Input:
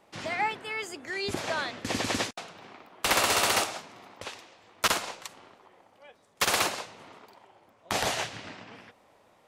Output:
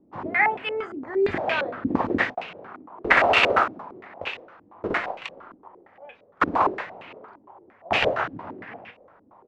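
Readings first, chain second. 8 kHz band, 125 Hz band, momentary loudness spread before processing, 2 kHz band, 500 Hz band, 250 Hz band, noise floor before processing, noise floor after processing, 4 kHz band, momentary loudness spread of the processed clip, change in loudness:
under -20 dB, +3.5 dB, 19 LU, +7.0 dB, +8.5 dB, +8.5 dB, -63 dBFS, -57 dBFS, -2.0 dB, 21 LU, +5.0 dB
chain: on a send: early reflections 23 ms -10.5 dB, 39 ms -12.5 dB; on the sum: stepped low-pass 8.7 Hz 280–2600 Hz; gain +2.5 dB

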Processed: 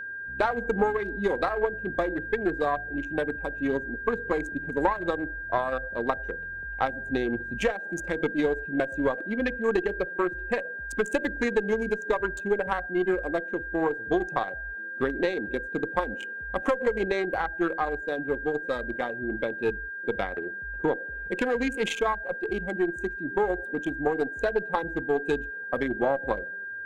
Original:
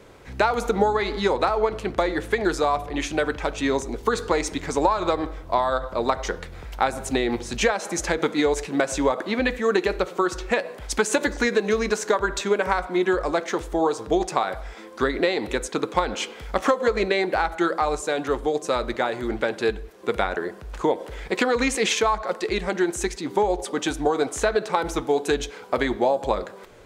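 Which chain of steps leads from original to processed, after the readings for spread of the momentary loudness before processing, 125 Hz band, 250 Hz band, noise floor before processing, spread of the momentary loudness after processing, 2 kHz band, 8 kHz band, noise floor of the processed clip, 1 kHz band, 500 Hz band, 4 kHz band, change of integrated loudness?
5 LU, -4.5 dB, -3.5 dB, -41 dBFS, 5 LU, -0.5 dB, -18.0 dB, -37 dBFS, -6.5 dB, -4.5 dB, -12.5 dB, -4.5 dB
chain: Wiener smoothing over 41 samples; HPF 51 Hz; spectral noise reduction 6 dB; bell 5200 Hz -11 dB 0.65 oct; tube stage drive 11 dB, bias 0.55; whine 1600 Hz -34 dBFS

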